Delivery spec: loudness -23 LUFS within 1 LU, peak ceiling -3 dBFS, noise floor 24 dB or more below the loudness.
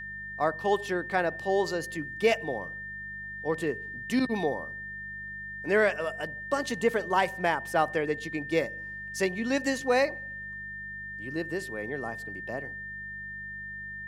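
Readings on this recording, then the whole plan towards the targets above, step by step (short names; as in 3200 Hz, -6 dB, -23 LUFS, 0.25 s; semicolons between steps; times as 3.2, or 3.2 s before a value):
hum 50 Hz; harmonics up to 200 Hz; hum level -49 dBFS; steady tone 1800 Hz; tone level -37 dBFS; loudness -30.5 LUFS; peak -11.5 dBFS; loudness target -23.0 LUFS
-> de-hum 50 Hz, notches 4; notch 1800 Hz, Q 30; gain +7.5 dB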